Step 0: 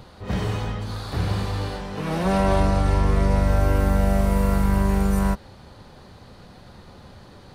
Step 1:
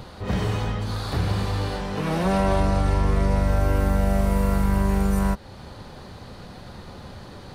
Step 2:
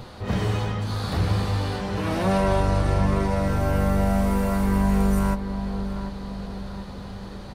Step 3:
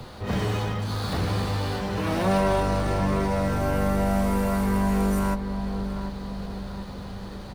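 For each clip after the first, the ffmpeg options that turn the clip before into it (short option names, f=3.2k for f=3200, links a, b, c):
-af "acompressor=threshold=-33dB:ratio=1.5,volume=5dB"
-filter_complex "[0:a]flanger=delay=8.2:depth=3.6:regen=-50:speed=0.38:shape=sinusoidal,asplit=2[a][b];[b]adelay=739,lowpass=f=1.7k:p=1,volume=-9dB,asplit=2[c][d];[d]adelay=739,lowpass=f=1.7k:p=1,volume=0.54,asplit=2[e][f];[f]adelay=739,lowpass=f=1.7k:p=1,volume=0.54,asplit=2[g][h];[h]adelay=739,lowpass=f=1.7k:p=1,volume=0.54,asplit=2[i][j];[j]adelay=739,lowpass=f=1.7k:p=1,volume=0.54,asplit=2[k][l];[l]adelay=739,lowpass=f=1.7k:p=1,volume=0.54[m];[c][e][g][i][k][m]amix=inputs=6:normalize=0[n];[a][n]amix=inputs=2:normalize=0,volume=4dB"
-filter_complex "[0:a]acrossover=split=170|500|2700[a][b][c][d];[a]asoftclip=type=tanh:threshold=-25.5dB[e];[d]acrusher=bits=2:mode=log:mix=0:aa=0.000001[f];[e][b][c][f]amix=inputs=4:normalize=0"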